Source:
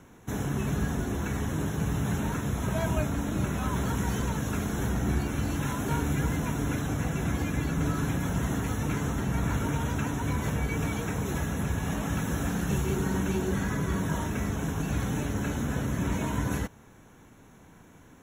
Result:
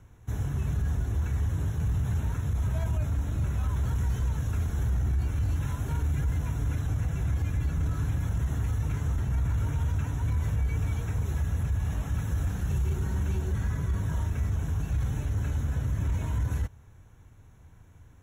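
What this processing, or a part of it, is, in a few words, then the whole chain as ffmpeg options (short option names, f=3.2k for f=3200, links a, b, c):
car stereo with a boomy subwoofer: -af "lowshelf=f=140:t=q:w=1.5:g=13.5,alimiter=limit=-13dB:level=0:latency=1:release=13,volume=-8dB"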